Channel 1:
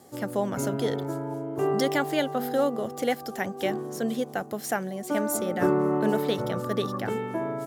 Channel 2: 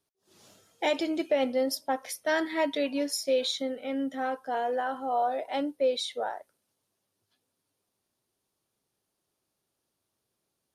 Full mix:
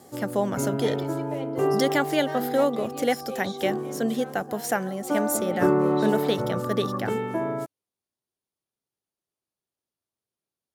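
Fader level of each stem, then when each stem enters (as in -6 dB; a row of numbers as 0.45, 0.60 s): +2.5, -11.0 dB; 0.00, 0.00 s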